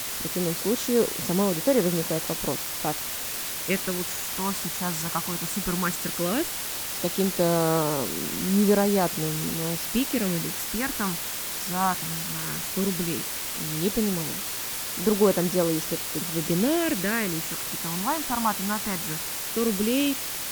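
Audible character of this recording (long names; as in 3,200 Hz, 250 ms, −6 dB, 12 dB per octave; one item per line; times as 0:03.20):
phaser sweep stages 4, 0.15 Hz, lowest notch 460–3,200 Hz
a quantiser's noise floor 6 bits, dither triangular
Opus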